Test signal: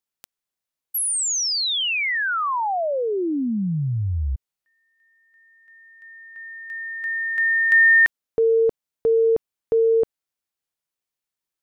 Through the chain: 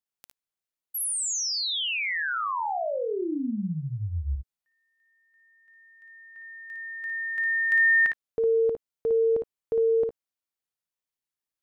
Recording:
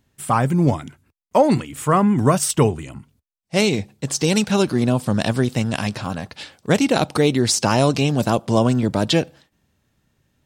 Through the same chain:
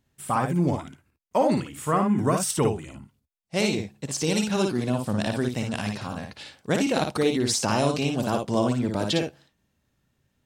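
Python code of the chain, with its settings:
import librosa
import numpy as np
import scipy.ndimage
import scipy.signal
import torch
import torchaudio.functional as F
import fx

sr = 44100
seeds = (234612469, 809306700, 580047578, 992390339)

p1 = fx.dynamic_eq(x, sr, hz=130.0, q=3.2, threshold_db=-34.0, ratio=4.0, max_db=-4)
p2 = p1 + fx.room_early_taps(p1, sr, ms=(57, 72), db=(-4.5, -17.5), dry=0)
y = p2 * librosa.db_to_amplitude(-7.0)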